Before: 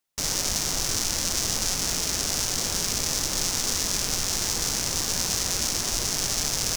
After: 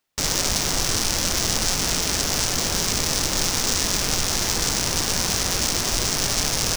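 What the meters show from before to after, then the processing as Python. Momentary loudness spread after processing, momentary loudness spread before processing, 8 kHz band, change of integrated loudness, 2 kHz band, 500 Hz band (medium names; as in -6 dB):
1 LU, 1 LU, +2.0 dB, +3.5 dB, +6.0 dB, +6.5 dB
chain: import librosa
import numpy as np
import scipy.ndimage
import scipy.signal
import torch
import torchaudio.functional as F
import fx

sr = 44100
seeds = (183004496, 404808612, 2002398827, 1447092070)

p1 = fx.sample_hold(x, sr, seeds[0], rate_hz=14000.0, jitter_pct=0)
p2 = x + (p1 * 10.0 ** (-4.0 / 20.0))
y = p2 * 10.0 ** (2.0 / 20.0)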